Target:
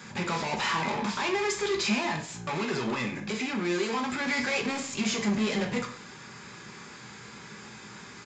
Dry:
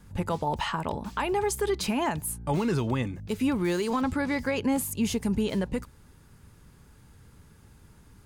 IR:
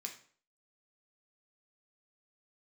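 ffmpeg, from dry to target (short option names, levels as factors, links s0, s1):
-filter_complex "[0:a]asettb=1/sr,asplit=3[s0][s1][s2];[s0]atrim=end=1.984[s3];[s1]atrim=start=1.98:end=4.27,asetpts=PTS-STARTPTS,afade=t=in:d=0.004:c=qsin,afade=t=out:st=2.286:d=0.004:c=qsin,acompressor=threshold=0.0282:ratio=6[s4];[s2]atrim=start=4.266[s5];[s3][s4]acrossfade=d=0.004:c1=hsin:c2=qsin[s6];[s6][s5]acrossfade=d=0.004:c1=qsin:c2=hsin,asplit=2[s7][s8];[s8]highpass=f=720:p=1,volume=35.5,asoftclip=type=tanh:threshold=0.15[s9];[s7][s9]amix=inputs=2:normalize=0,lowpass=f=5600:p=1,volume=0.501[s10];[1:a]atrim=start_sample=2205[s11];[s10][s11]afir=irnorm=-1:irlink=0,aresample=16000,aresample=44100,volume=0.794"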